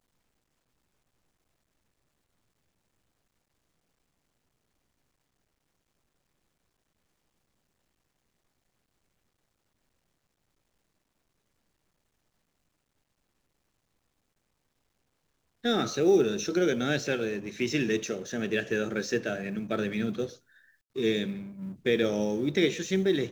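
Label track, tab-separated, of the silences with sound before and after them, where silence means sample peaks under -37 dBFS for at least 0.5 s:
20.270000	20.960000	silence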